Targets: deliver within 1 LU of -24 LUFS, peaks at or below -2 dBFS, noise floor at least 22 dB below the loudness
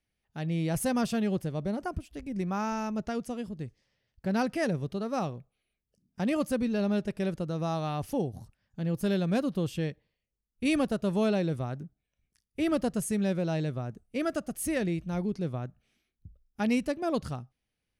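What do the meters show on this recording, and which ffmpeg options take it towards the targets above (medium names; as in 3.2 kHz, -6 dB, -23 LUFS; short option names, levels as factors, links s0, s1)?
loudness -31.0 LUFS; peak level -15.5 dBFS; loudness target -24.0 LUFS
-> -af "volume=2.24"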